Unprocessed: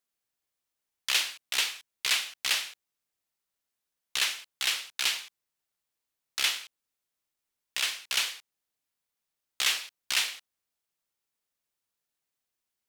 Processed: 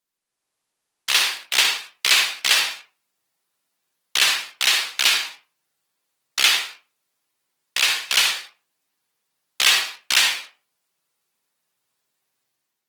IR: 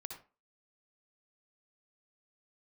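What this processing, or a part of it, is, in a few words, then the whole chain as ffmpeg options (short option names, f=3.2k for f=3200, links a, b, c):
far-field microphone of a smart speaker: -filter_complex "[0:a]highshelf=f=6.6k:g=-2.5[a];[1:a]atrim=start_sample=2205[b];[a][b]afir=irnorm=-1:irlink=0,highpass=f=120:w=0.5412,highpass=f=120:w=1.3066,dynaudnorm=f=110:g=7:m=7dB,volume=8dB" -ar 48000 -c:a libopus -b:a 20k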